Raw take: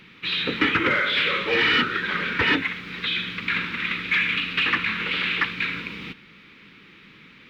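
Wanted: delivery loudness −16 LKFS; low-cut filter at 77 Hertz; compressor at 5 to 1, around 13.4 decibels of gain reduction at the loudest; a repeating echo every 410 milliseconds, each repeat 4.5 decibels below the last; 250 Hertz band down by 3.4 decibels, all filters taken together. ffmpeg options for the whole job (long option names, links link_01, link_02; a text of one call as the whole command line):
ffmpeg -i in.wav -af "highpass=77,equalizer=frequency=250:width_type=o:gain=-4.5,acompressor=threshold=-33dB:ratio=5,aecho=1:1:410|820|1230|1640|2050|2460|2870|3280|3690:0.596|0.357|0.214|0.129|0.0772|0.0463|0.0278|0.0167|0.01,volume=16dB" out.wav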